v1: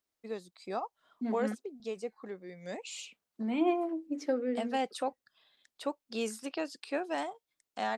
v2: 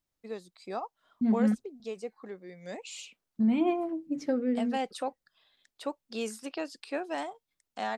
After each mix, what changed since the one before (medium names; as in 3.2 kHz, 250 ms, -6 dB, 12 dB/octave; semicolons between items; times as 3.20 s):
second voice: remove high-pass 290 Hz 24 dB/octave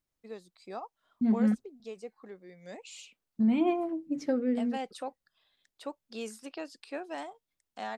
first voice -4.5 dB